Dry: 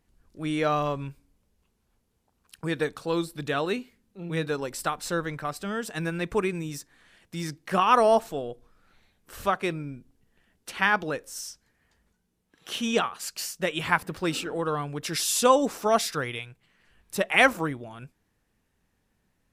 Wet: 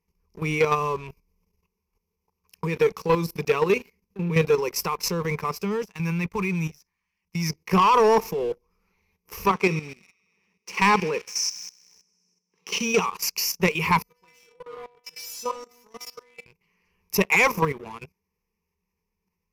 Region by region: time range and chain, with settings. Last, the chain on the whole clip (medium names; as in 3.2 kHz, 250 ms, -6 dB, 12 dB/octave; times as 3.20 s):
5.84–7.50 s: peaking EQ 450 Hz -11.5 dB 0.76 oct + level held to a coarse grid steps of 18 dB
9.49–13.06 s: Chebyshev band-pass 180–7000 Hz + feedback echo behind a high-pass 64 ms, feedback 78%, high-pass 3.5 kHz, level -9 dB
14.02–16.46 s: peaking EQ 200 Hz -3 dB 2.1 oct + hum notches 60/120/180/240/300/360/420/480 Hz + inharmonic resonator 240 Hz, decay 0.62 s, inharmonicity 0.002
whole clip: rippled EQ curve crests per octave 0.81, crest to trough 18 dB; level held to a coarse grid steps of 11 dB; waveshaping leveller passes 2